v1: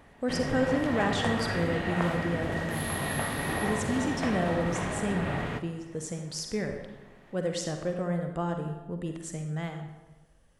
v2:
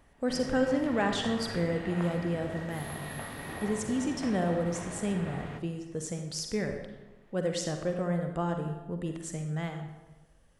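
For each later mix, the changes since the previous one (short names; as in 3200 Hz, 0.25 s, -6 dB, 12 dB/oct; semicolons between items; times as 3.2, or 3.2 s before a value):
background -9.0 dB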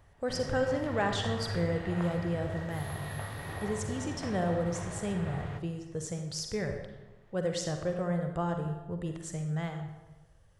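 master: add fifteen-band EQ 100 Hz +11 dB, 250 Hz -9 dB, 2500 Hz -3 dB, 10000 Hz -4 dB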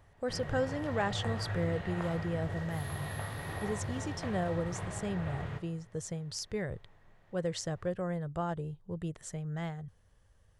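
speech: send off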